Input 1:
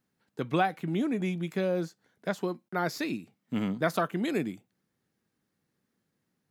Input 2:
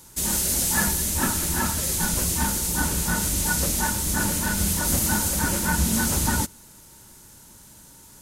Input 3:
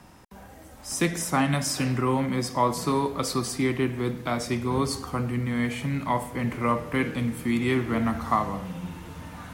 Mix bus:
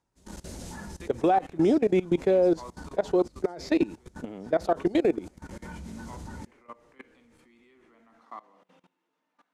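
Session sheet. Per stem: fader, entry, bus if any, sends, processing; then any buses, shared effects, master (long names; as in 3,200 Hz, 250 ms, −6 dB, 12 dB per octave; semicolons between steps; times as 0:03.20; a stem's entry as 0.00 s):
−0.5 dB, 0.70 s, bus A, no send, flat-topped bell 520 Hz +12 dB
−10.5 dB, 0.00 s, bus A, no send, drawn EQ curve 140 Hz 0 dB, 560 Hz +1 dB, 3,000 Hz −9 dB; automatic ducking −11 dB, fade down 1.55 s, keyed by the third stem
−15.0 dB, 0.00 s, no bus, no send, high-pass filter 280 Hz 24 dB per octave; shaped tremolo saw down 2.3 Hz, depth 45%
bus A: 0.0 dB, automatic gain control gain up to 11 dB; brickwall limiter −13 dBFS, peak gain reduction 12 dB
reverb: not used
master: low-pass filter 6,200 Hz 12 dB per octave; output level in coarse steps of 20 dB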